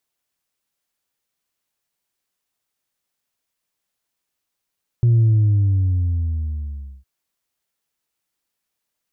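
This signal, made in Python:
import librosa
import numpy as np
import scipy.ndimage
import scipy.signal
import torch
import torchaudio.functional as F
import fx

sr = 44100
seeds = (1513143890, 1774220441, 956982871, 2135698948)

y = fx.sub_drop(sr, level_db=-11.5, start_hz=120.0, length_s=2.01, drive_db=1, fade_s=1.85, end_hz=65.0)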